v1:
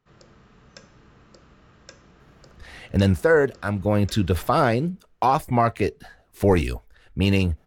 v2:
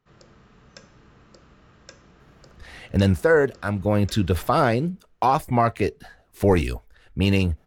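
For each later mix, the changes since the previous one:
no change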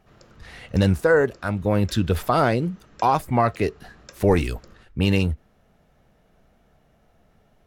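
speech: entry -2.20 s

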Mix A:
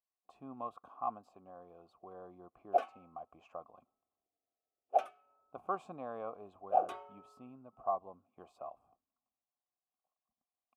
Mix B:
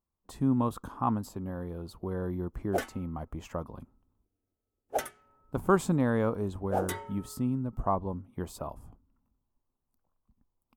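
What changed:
background -6.5 dB; master: remove vowel filter a

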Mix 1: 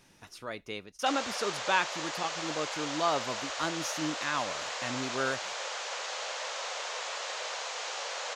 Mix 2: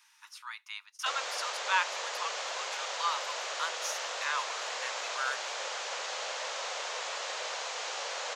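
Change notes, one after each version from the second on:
speech: add steep high-pass 880 Hz 96 dB/octave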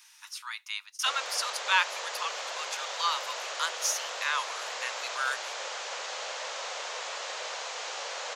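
speech: add treble shelf 2.3 kHz +10.5 dB

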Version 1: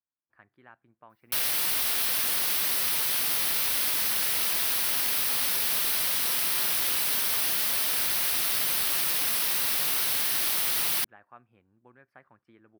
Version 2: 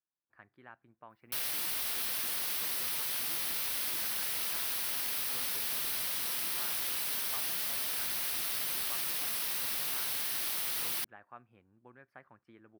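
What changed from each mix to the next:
background -8.0 dB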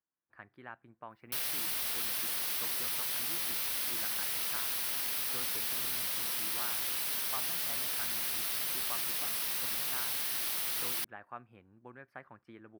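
speech +5.5 dB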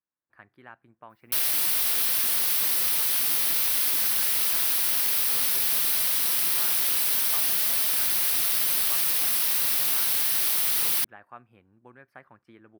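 background +6.0 dB; master: add treble shelf 5.8 kHz +5.5 dB

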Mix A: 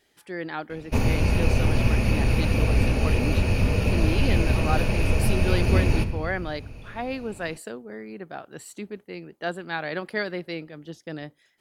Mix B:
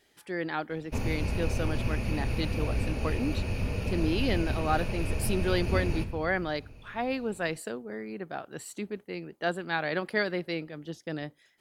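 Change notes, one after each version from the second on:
background -9.0 dB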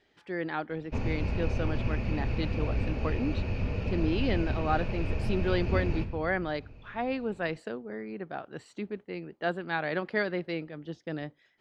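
master: add distance through air 170 m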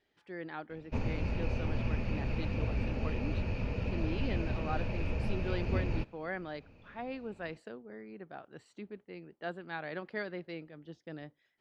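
speech -9.0 dB; reverb: off

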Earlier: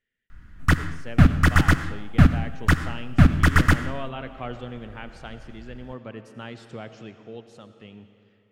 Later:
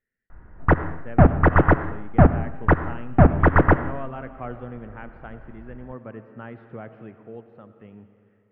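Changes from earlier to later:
background: add high-order bell 590 Hz +13.5 dB; master: add low-pass 1.9 kHz 24 dB/octave

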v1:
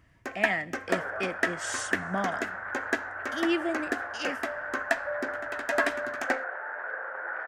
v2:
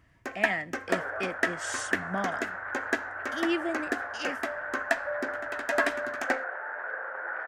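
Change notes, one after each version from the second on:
speech: send -9.5 dB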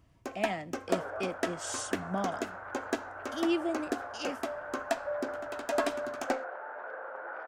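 master: add peaking EQ 1.8 kHz -14.5 dB 0.67 oct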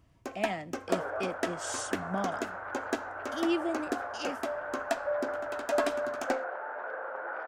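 second sound +3.5 dB

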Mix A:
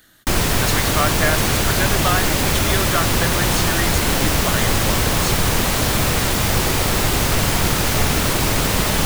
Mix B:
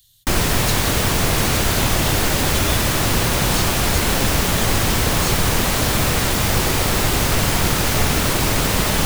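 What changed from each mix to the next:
speech: add Chebyshev band-stop 120–3400 Hz, order 3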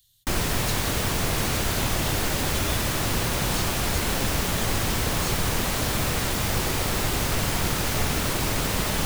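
speech -7.5 dB; background -7.0 dB

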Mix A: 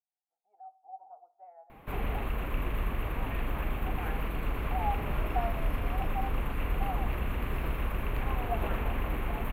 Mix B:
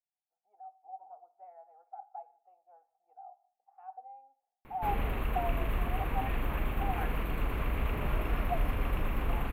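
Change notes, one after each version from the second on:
background: entry +2.95 s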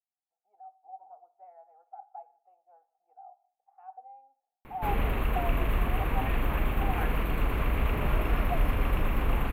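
background +4.5 dB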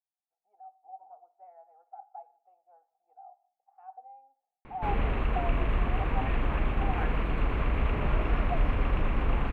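master: add distance through air 120 m

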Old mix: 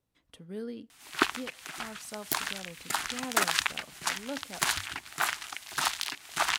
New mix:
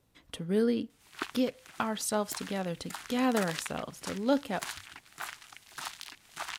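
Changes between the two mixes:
speech +11.5 dB; background -11.0 dB

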